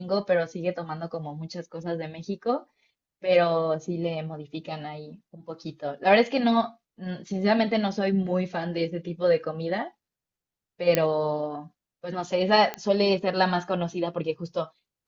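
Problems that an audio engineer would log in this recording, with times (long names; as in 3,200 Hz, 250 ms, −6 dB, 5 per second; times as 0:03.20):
0:10.95: click −6 dBFS
0:12.74: click −15 dBFS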